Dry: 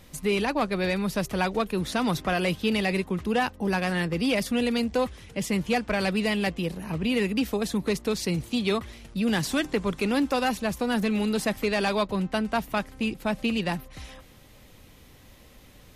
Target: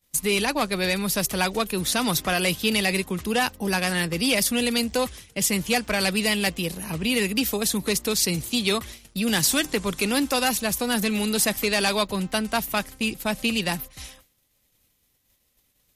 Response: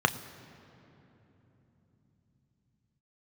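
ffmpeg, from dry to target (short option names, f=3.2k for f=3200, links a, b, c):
-af "agate=range=-33dB:threshold=-37dB:ratio=3:detection=peak,crystalizer=i=4:c=0"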